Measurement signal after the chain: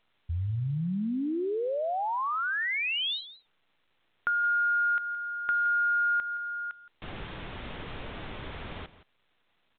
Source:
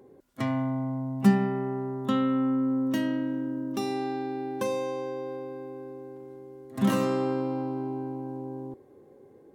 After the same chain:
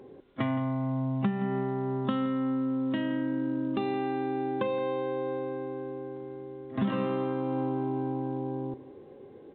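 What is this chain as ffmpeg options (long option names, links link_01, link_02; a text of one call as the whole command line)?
ffmpeg -i in.wav -filter_complex "[0:a]acompressor=threshold=-30dB:ratio=8,asplit=2[link_01][link_02];[link_02]aecho=0:1:169:0.158[link_03];[link_01][link_03]amix=inputs=2:normalize=0,volume=4.5dB" -ar 8000 -c:a pcm_alaw out.wav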